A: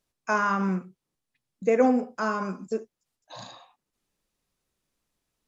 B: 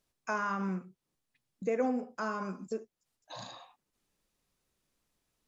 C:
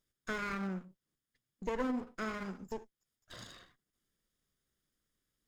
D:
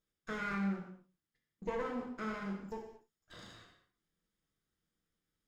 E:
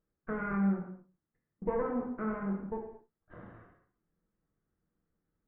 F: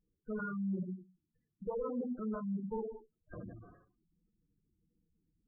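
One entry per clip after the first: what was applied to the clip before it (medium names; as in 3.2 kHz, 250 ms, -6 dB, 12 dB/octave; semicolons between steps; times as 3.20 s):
compression 1.5:1, threshold -45 dBFS, peak gain reduction 10.5 dB
comb filter that takes the minimum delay 0.59 ms; trim -3 dB
treble shelf 5.2 kHz -8.5 dB; gated-style reverb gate 260 ms falling, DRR -0.5 dB; trim -4 dB
Gaussian low-pass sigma 5.7 samples; trim +6.5 dB
spectral gate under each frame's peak -10 dB strong; reverse; compression 6:1, threshold -40 dBFS, peak gain reduction 13.5 dB; reverse; trim +5 dB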